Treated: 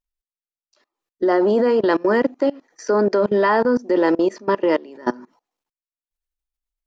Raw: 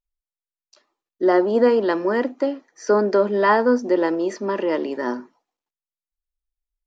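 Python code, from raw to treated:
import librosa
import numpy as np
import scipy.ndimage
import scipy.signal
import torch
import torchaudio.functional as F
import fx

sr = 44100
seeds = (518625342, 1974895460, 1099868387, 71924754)

y = fx.level_steps(x, sr, step_db=23)
y = y * 10.0 ** (7.0 / 20.0)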